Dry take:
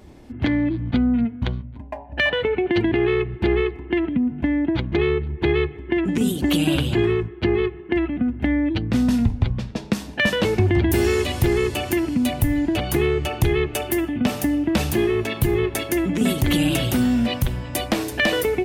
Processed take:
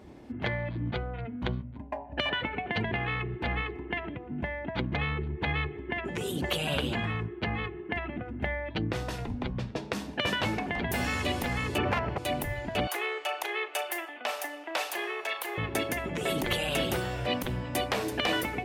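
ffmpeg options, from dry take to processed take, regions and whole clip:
ffmpeg -i in.wav -filter_complex "[0:a]asettb=1/sr,asplit=3[link_01][link_02][link_03];[link_01]atrim=end=11.784[link_04];[link_02]atrim=start=11.78:end=12.18,asetpts=PTS-STARTPTS,afade=type=in:duration=0.004:curve=qsin,afade=type=out:start_time=0.396:duration=0.004:curve=qsin,lowpass=1800,aeval=exprs='0.15*(abs(mod(val(0)/0.15+3,4)-2)-1)':channel_layout=same,acontrast=81[link_05];[link_03]atrim=start=12.176[link_06];[link_04][link_05]acrossfade=duration=0.004:curve1=hsin:curve2=qsin[link_07];[link_07][link_06]acrossfade=duration=0.004:curve1=qsin:curve2=hsin,asettb=1/sr,asplit=3[link_08][link_09][link_10];[link_08]atrim=end=12.874[link_11];[link_09]atrim=start=12.87:end=15.58,asetpts=PTS-STARTPTS,afade=type=in:duration=0.004:curve=qsin,afade=type=out:start_time=2.706:duration=0.004:curve=qsin,highpass=frequency=620:width=0.5412,highpass=frequency=620:width=1.3066,asplit=2[link_12][link_13];[link_13]adelay=37,volume=-12dB[link_14];[link_12][link_14]amix=inputs=2:normalize=0,atrim=end_sample=119511[link_15];[link_10]atrim=start=15.576[link_16];[link_11][link_15]acrossfade=duration=0.004:curve1=hsin:curve2=qsin[link_17];[link_17][link_16]acrossfade=duration=0.004:curve1=qsin:curve2=hsin,highpass=frequency=130:poles=1,highshelf=frequency=3800:gain=-8.5,afftfilt=real='re*lt(hypot(re,im),0.398)':imag='im*lt(hypot(re,im),0.398)':win_size=1024:overlap=0.75,volume=-1.5dB" out.wav

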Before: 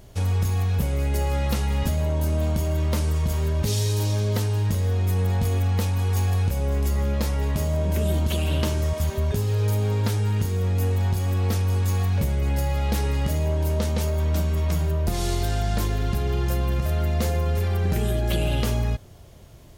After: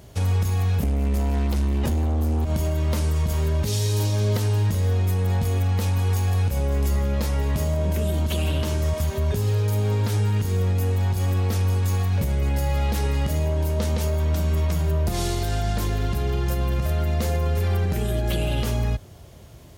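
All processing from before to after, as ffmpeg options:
ffmpeg -i in.wav -filter_complex "[0:a]asettb=1/sr,asplit=3[link_01][link_02][link_03];[link_01]atrim=end=0.834[link_04];[link_02]atrim=start=0.83:end=2.45,asetpts=PTS-STARTPTS,afade=type=in:duration=0.004:curve=qsin,afade=type=out:start_time=1.616:duration=0.004:curve=qsin,lowshelf=frequency=250:gain=10,aeval=exprs='0.447*sin(PI/2*2.24*val(0)/0.447)':channel_layout=same[link_05];[link_03]atrim=start=2.446[link_06];[link_04][link_05]acrossfade=duration=0.004:curve1=hsin:curve2=qsin[link_07];[link_07][link_06]acrossfade=duration=0.004:curve1=qsin:curve2=hsin,highpass=frequency=44:width=0.5412,highpass=frequency=44:width=1.3066,alimiter=limit=-17.5dB:level=0:latency=1:release=92,volume=2.5dB" out.wav

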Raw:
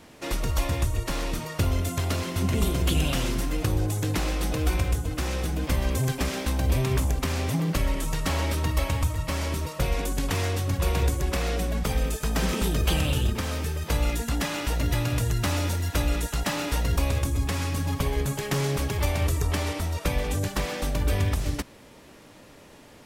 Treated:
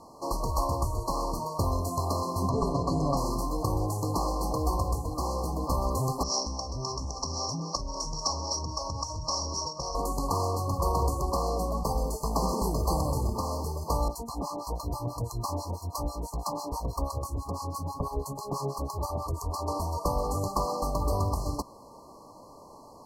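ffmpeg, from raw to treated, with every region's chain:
ffmpeg -i in.wav -filter_complex "[0:a]asettb=1/sr,asplit=3[link_01][link_02][link_03];[link_01]atrim=end=2.494[link_04];[link_02]atrim=start=2.49:end=3.17,asetpts=PTS-STARTPTS,afade=type=in:duration=0.004:curve=qsin,afade=type=out:start_time=0.676:duration=0.004:curve=qsin,lowpass=4500,aecho=1:1:7.1:0.77,atrim=end_sample=29988[link_05];[link_03]atrim=start=3.166[link_06];[link_04][link_05]acrossfade=duration=0.004:curve1=hsin:curve2=qsin[link_07];[link_07][link_06]acrossfade=duration=0.004:curve1=qsin:curve2=hsin,asettb=1/sr,asplit=3[link_08][link_09][link_10];[link_08]atrim=end=6.234[link_11];[link_09]atrim=start=6.23:end=9.95,asetpts=PTS-STARTPTS,afade=type=in:duration=0.004:curve=qsin,afade=type=out:start_time=3.716:duration=0.004:curve=qsin,acompressor=threshold=-25dB:ratio=5:attack=3.2:release=140:knee=1:detection=peak,lowpass=frequency=5600:width_type=q:width=16,acrossover=split=410[link_12][link_13];[link_12]aeval=exprs='val(0)*(1-0.7/2+0.7/2*cos(2*PI*3.7*n/s))':channel_layout=same[link_14];[link_13]aeval=exprs='val(0)*(1-0.7/2-0.7/2*cos(2*PI*3.7*n/s))':channel_layout=same[link_15];[link_14][link_15]amix=inputs=2:normalize=0[link_16];[link_10]atrim=start=9.946[link_17];[link_11][link_16]acrossfade=duration=0.004:curve1=hsin:curve2=qsin[link_18];[link_18][link_17]acrossfade=duration=0.004:curve1=qsin:curve2=hsin,asettb=1/sr,asplit=3[link_19][link_20][link_21];[link_19]atrim=end=14.084[link_22];[link_20]atrim=start=14.08:end=19.68,asetpts=PTS-STARTPTS,afade=type=in:duration=0.004:curve=qsin,afade=type=out:start_time=5.596:duration=0.004:curve=qsin,acrossover=split=800[link_23][link_24];[link_23]aeval=exprs='val(0)*(1-1/2+1/2*cos(2*PI*6.1*n/s))':channel_layout=same[link_25];[link_24]aeval=exprs='val(0)*(1-1/2-1/2*cos(2*PI*6.1*n/s))':channel_layout=same[link_26];[link_25][link_26]amix=inputs=2:normalize=0,asuperstop=centerf=2100:order=4:qfactor=4.8[link_27];[link_21]atrim=start=19.676[link_28];[link_22][link_27]acrossfade=duration=0.004:curve1=hsin:curve2=qsin[link_29];[link_29][link_28]acrossfade=duration=0.004:curve1=qsin:curve2=hsin,afftfilt=real='re*(1-between(b*sr/4096,1200,4100))':imag='im*(1-between(b*sr/4096,1200,4100))':win_size=4096:overlap=0.75,equalizer=frequency=1200:width_type=o:width=2:gain=14,volume=-5dB" out.wav

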